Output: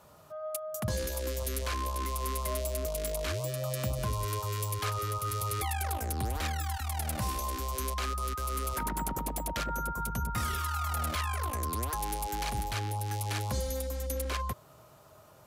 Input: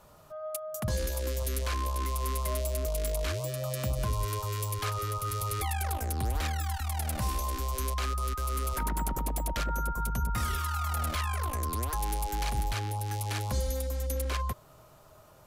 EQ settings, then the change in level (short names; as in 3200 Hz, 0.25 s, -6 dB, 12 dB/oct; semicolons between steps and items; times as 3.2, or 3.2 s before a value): HPF 71 Hz; 0.0 dB